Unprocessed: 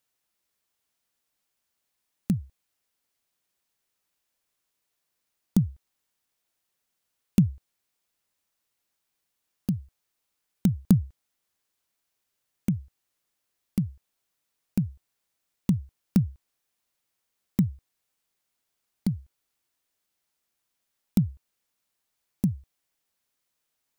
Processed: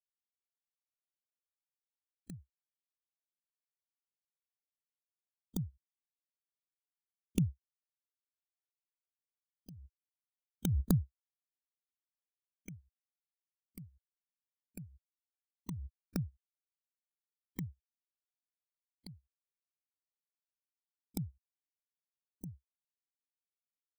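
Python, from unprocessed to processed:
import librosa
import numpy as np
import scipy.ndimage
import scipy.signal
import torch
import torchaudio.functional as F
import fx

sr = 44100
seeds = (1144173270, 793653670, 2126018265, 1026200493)

y = fx.bin_expand(x, sr, power=3.0)
y = fx.peak_eq(y, sr, hz=210.0, db=-12.5, octaves=0.4)
y = fx.pre_swell(y, sr, db_per_s=23.0)
y = F.gain(torch.from_numpy(y), -3.0).numpy()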